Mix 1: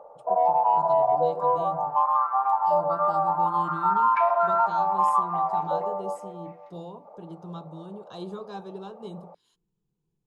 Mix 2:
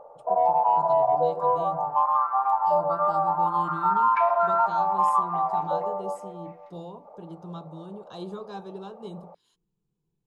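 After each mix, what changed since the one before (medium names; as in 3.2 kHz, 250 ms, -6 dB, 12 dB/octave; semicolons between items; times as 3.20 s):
first sound: remove high-pass 170 Hz 24 dB/octave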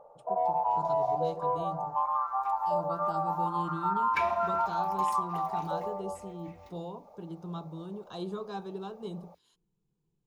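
first sound -7.0 dB; second sound: remove band-pass filter 1.6 kHz, Q 1.6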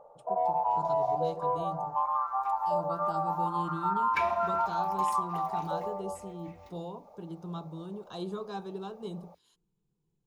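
speech: add treble shelf 8.1 kHz +4.5 dB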